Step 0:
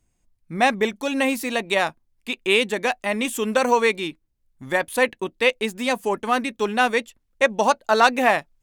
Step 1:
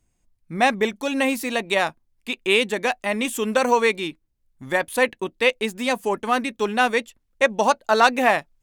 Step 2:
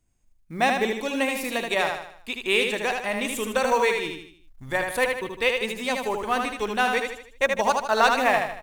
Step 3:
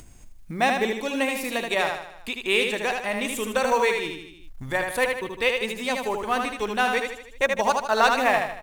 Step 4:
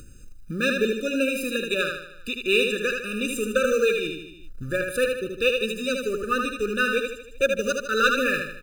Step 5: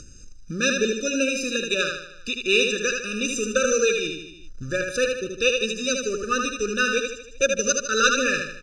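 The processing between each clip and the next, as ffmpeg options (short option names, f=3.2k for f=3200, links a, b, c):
-af anull
-af "aecho=1:1:77|154|231|308|385:0.596|0.262|0.115|0.0507|0.0223,asubboost=boost=7.5:cutoff=80,acrusher=bits=8:mode=log:mix=0:aa=0.000001,volume=-3.5dB"
-af "acompressor=mode=upward:threshold=-29dB:ratio=2.5"
-filter_complex "[0:a]asplit=2[a][b];[b]acrusher=bits=3:mode=log:mix=0:aa=0.000001,volume=-10dB[c];[a][c]amix=inputs=2:normalize=0,afftfilt=real='re*eq(mod(floor(b*sr/1024/590),2),0)':imag='im*eq(mod(floor(b*sr/1024/590),2),0)':win_size=1024:overlap=0.75"
-af "lowpass=f=5.8k:t=q:w=8.9"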